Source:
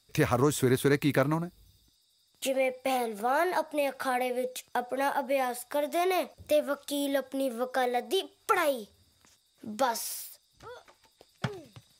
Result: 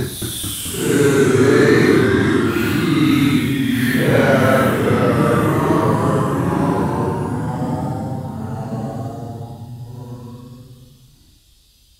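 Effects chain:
extreme stretch with random phases 10×, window 0.05 s, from 0:00.76
delay with pitch and tempo change per echo 218 ms, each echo −2 semitones, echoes 3
level +8.5 dB

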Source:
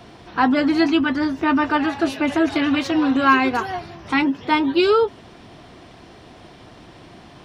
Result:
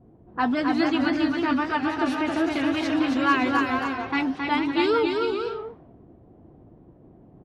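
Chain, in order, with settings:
bouncing-ball delay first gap 270 ms, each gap 0.65×, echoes 5
pitch vibrato 3.7 Hz 77 cents
low-pass that shuts in the quiet parts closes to 340 Hz, open at −15 dBFS
level −6.5 dB

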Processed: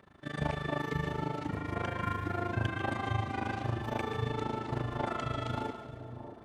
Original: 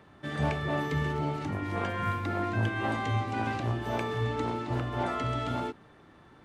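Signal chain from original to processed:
amplitude modulation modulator 26 Hz, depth 90%
echo with a time of its own for lows and highs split 950 Hz, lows 627 ms, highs 140 ms, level −9.5 dB

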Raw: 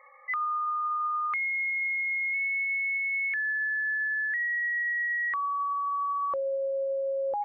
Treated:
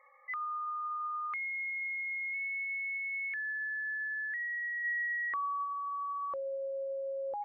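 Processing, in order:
0:04.83–0:05.64: parametric band 680 Hz → 270 Hz +11 dB 2.3 octaves
level −7.5 dB

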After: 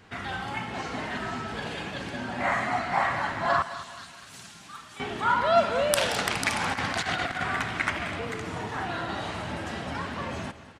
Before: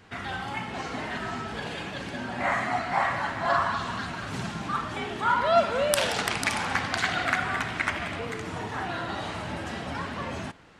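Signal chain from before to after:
0:03.62–0:05.00: first-order pre-emphasis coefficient 0.9
0:06.61–0:07.43: compressor whose output falls as the input rises −29 dBFS, ratio −0.5
repeating echo 210 ms, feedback 41%, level −15 dB

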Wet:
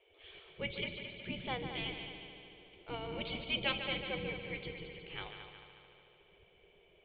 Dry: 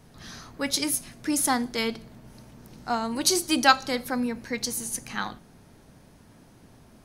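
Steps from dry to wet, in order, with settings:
formant resonators in series i
gate on every frequency bin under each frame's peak −20 dB weak
echo machine with several playback heads 73 ms, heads second and third, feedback 62%, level −9 dB
level +13.5 dB

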